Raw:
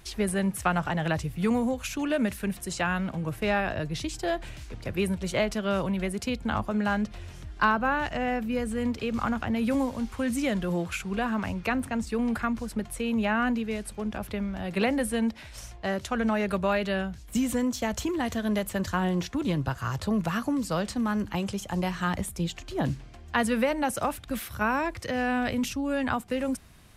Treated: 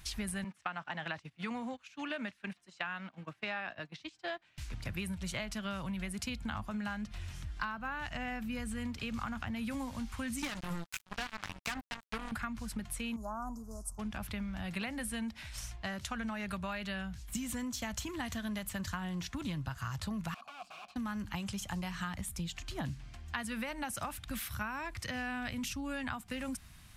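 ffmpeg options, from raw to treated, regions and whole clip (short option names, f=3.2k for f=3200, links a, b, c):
-filter_complex "[0:a]asettb=1/sr,asplit=3[a][b][c];[a]atrim=end=0.444[d];[b]atrim=start=0.44:end=4.58,asetpts=PTS-STARTPTS,afade=t=in:d=0.004:c=qsin,afade=t=out:st=4.136:d=0.004:c=qsin,agate=range=-19dB:threshold=-31dB:ratio=16:release=100:detection=peak,highpass=300,lowpass=4.5k[e];[c]atrim=start=4.576[f];[d][e]acrossfade=d=0.004:c1=hsin:c2=qsin[g];[g][f]acrossfade=d=0.004:c1=qsin:c2=hsin,asettb=1/sr,asplit=3[h][i][j];[h]atrim=end=10.424[k];[i]atrim=start=10.42:end=12.32,asetpts=PTS-STARTPTS,afade=t=in:d=0.004:c=qsin,afade=t=out:st=1.896:d=0.004:c=qsin,aecho=1:1:6.7:0.57,atrim=end_sample=83790,acrusher=bits=3:mix=0:aa=0.5[l];[j]atrim=start=12.316[m];[k][l]acrossfade=d=0.004:c1=hsin:c2=qsin[n];[n][m]acrossfade=d=0.004:c1=qsin:c2=hsin,asettb=1/sr,asplit=3[o][p][q];[o]atrim=end=13.164[r];[p]atrim=start=13.16:end=13.99,asetpts=PTS-STARTPTS,afade=t=in:d=0.004:c=qsin,afade=t=out:st=0.826:d=0.004:c=qsin,asuperstop=centerf=2600:order=12:qfactor=0.61,equalizer=f=210:t=o:w=2.3:g=-10,aecho=1:1:3:0.32,atrim=end_sample=36603[s];[q]atrim=start=13.986[t];[r][s]acrossfade=d=0.004:c1=hsin:c2=qsin[u];[u][t]acrossfade=d=0.004:c1=qsin:c2=hsin,asettb=1/sr,asplit=3[v][w][x];[v]atrim=end=20.344[y];[w]atrim=start=20.34:end=20.96,asetpts=PTS-STARTPTS,afade=t=in:d=0.004:c=qsin,afade=t=out:st=0.616:d=0.004:c=qsin,equalizer=f=4k:t=o:w=0.61:g=4,aeval=exprs='(mod(22.4*val(0)+1,2)-1)/22.4':c=same,asplit=3[z][aa][ab];[z]bandpass=f=730:t=q:w=8,volume=0dB[ac];[aa]bandpass=f=1.09k:t=q:w=8,volume=-6dB[ad];[ab]bandpass=f=2.44k:t=q:w=8,volume=-9dB[ae];[ac][ad][ae]amix=inputs=3:normalize=0[af];[x]atrim=start=20.956[ag];[y][af]acrossfade=d=0.004:c1=hsin:c2=qsin[ah];[ah][ag]acrossfade=d=0.004:c1=qsin:c2=hsin,equalizer=f=440:t=o:w=1.4:g=-14.5,acompressor=threshold=-35dB:ratio=6"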